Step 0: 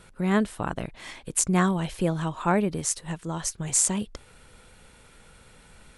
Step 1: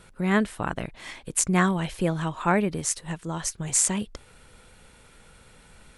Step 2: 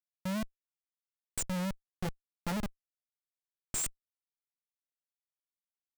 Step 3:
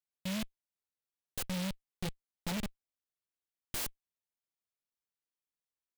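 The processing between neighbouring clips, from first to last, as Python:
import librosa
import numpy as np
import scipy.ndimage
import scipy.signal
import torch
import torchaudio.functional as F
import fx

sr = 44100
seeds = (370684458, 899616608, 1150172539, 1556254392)

y1 = fx.dynamic_eq(x, sr, hz=2000.0, q=1.3, threshold_db=-42.0, ratio=4.0, max_db=5)
y2 = fx.spec_expand(y1, sr, power=3.1)
y2 = fx.level_steps(y2, sr, step_db=24)
y2 = fx.schmitt(y2, sr, flips_db=-34.5)
y3 = fx.noise_mod_delay(y2, sr, seeds[0], noise_hz=2700.0, depth_ms=0.19)
y3 = F.gain(torch.from_numpy(y3), -2.0).numpy()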